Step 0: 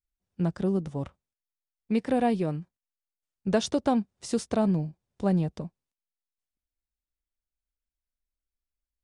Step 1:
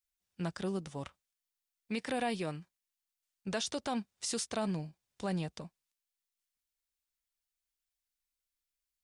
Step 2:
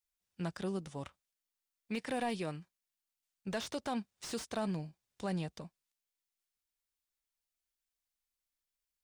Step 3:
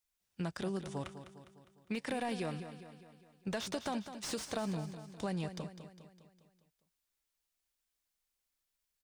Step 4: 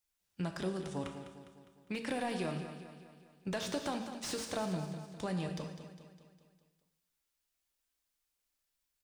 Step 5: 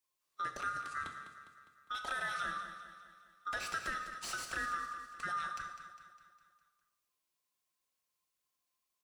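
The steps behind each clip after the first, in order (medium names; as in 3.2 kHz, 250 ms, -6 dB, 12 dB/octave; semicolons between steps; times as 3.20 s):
tilt shelf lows -8.5 dB; peak limiter -23 dBFS, peak gain reduction 11 dB; trim -2.5 dB
slew-rate limiter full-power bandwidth 48 Hz; trim -1.5 dB
compression, threshold -37 dBFS, peak gain reduction 5.5 dB; on a send: feedback delay 203 ms, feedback 53%, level -11 dB; on the sum: trim +3.5 dB
gated-style reverb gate 320 ms falling, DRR 5.5 dB
split-band scrambler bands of 1 kHz; trim -2 dB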